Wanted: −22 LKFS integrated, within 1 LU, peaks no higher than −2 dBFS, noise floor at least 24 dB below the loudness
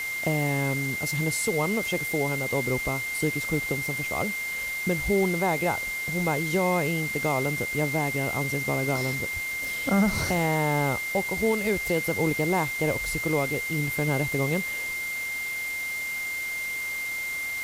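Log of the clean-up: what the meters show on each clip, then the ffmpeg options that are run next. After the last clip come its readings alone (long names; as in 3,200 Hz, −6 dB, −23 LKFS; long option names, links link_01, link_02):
interfering tone 2,100 Hz; level of the tone −29 dBFS; background noise floor −32 dBFS; target noise floor −50 dBFS; integrated loudness −26.0 LKFS; sample peak −13.0 dBFS; target loudness −22.0 LKFS
→ -af "bandreject=frequency=2100:width=30"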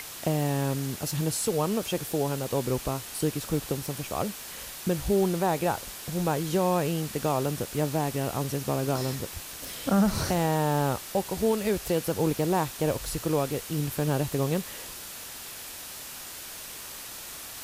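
interfering tone none found; background noise floor −41 dBFS; target noise floor −53 dBFS
→ -af "afftdn=noise_reduction=12:noise_floor=-41"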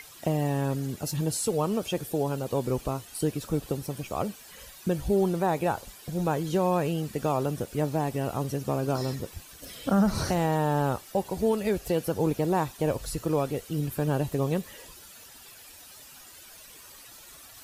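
background noise floor −49 dBFS; target noise floor −53 dBFS
→ -af "afftdn=noise_reduction=6:noise_floor=-49"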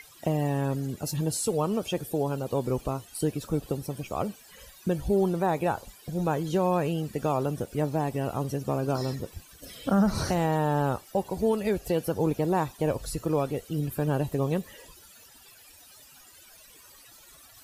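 background noise floor −53 dBFS; integrated loudness −28.5 LKFS; sample peak −15.5 dBFS; target loudness −22.0 LKFS
→ -af "volume=6.5dB"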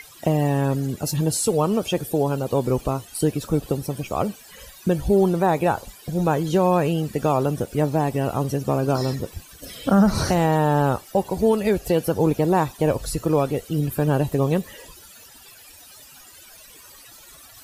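integrated loudness −22.0 LKFS; sample peak −9.0 dBFS; background noise floor −47 dBFS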